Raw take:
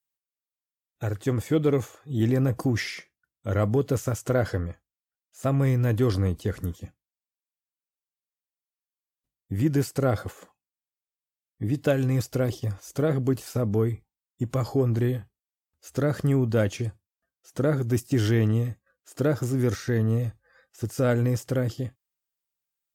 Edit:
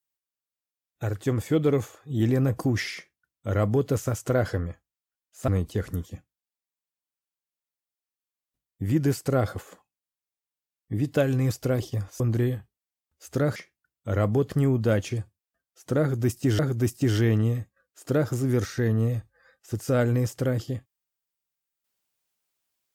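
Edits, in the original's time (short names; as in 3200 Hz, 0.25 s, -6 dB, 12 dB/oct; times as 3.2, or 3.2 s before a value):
2.95–3.89 copy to 16.18
5.48–6.18 cut
12.9–14.82 cut
17.69–18.27 loop, 2 plays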